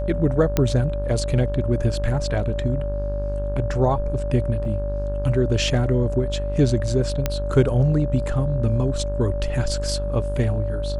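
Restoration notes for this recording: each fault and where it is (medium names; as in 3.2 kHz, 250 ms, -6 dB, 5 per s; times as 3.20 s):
buzz 50 Hz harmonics 34 -26 dBFS
whine 580 Hz -28 dBFS
0.57 s: pop -6 dBFS
4.65 s: dropout 2.2 ms
7.26 s: pop -7 dBFS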